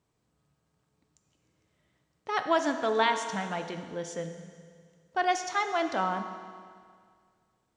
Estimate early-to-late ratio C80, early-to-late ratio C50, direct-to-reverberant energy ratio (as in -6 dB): 9.0 dB, 8.0 dB, 6.5 dB